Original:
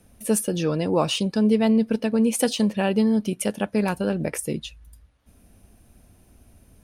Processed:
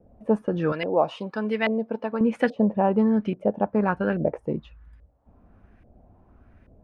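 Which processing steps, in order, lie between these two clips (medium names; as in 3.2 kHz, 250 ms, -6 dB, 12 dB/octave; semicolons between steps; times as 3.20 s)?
0.72–2.21 s: tilt EQ +4 dB/octave; LFO low-pass saw up 1.2 Hz 560–2000 Hz; trim -1 dB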